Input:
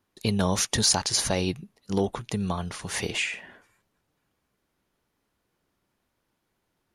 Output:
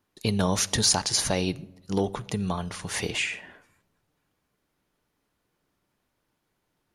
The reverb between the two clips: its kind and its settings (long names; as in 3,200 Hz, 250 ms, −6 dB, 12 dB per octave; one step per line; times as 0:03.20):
rectangular room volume 3,600 cubic metres, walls furnished, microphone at 0.42 metres